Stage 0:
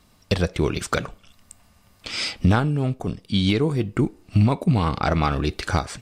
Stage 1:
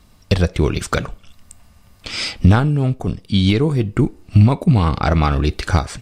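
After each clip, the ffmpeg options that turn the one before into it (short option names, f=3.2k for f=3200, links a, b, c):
-af "lowshelf=f=100:g=9,volume=3dB"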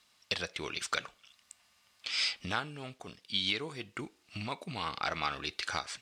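-af "acrusher=bits=9:mix=0:aa=0.000001,bandpass=f=3.5k:t=q:w=0.69:csg=0,volume=-6dB"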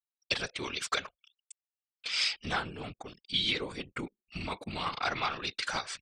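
-af "afftfilt=real='re*gte(hypot(re,im),0.00112)':imag='im*gte(hypot(re,im),0.00112)':win_size=1024:overlap=0.75,afftfilt=real='hypot(re,im)*cos(2*PI*random(0))':imag='hypot(re,im)*sin(2*PI*random(1))':win_size=512:overlap=0.75,anlmdn=0.0000251,volume=8dB"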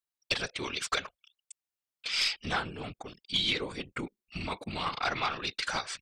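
-af "aeval=exprs='0.2*(cos(1*acos(clip(val(0)/0.2,-1,1)))-cos(1*PI/2))+0.0501*(cos(2*acos(clip(val(0)/0.2,-1,1)))-cos(2*PI/2))+0.00631*(cos(4*acos(clip(val(0)/0.2,-1,1)))-cos(4*PI/2))+0.00631*(cos(5*acos(clip(val(0)/0.2,-1,1)))-cos(5*PI/2))':c=same"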